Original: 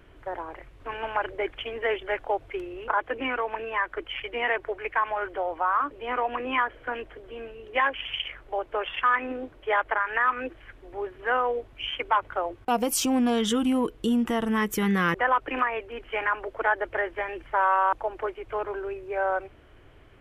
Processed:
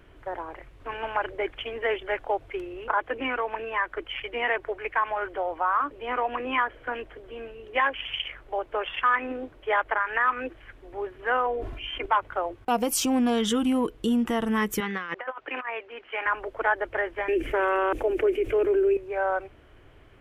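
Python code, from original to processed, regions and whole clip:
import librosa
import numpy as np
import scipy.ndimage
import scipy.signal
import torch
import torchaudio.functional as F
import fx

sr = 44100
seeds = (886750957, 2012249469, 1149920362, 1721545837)

y = fx.chain(x, sr, fx.high_shelf(hz=2200.0, db=-7.5),
    fx.comb(ms=2.9, depth=0.49),
    fx.sustainer(db_per_s=40.0), at=(11.46, 12.06))
y = fx.chain(y, sr, fx.highpass(hz=930.0, slope=6),
    fx.over_compress(threshold_db=-30.0, ratio=-0.5),
    fx.air_absorb(metres=160.0), at=(14.8, 16.26))
y = fx.chain(y, sr, fx.curve_eq(hz=(110.0, 180.0, 260.0, 390.0, 940.0, 2500.0, 4200.0, 6300.0, 13000.0), db=(0, -10, 9, 11, -13, 4, -5, 3, 8)),
    fx.env_flatten(amount_pct=50), at=(17.28, 18.97))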